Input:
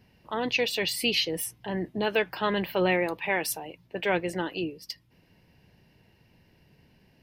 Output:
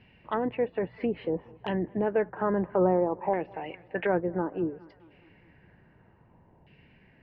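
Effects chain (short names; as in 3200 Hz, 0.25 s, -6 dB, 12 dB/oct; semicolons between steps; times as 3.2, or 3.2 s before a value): running mean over 5 samples; LFO low-pass saw down 0.6 Hz 870–2800 Hz; on a send: tape echo 0.207 s, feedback 63%, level -24 dB, low-pass 1800 Hz; on the sum: treble ducked by the level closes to 700 Hz, closed at -25 dBFS; gain +1.5 dB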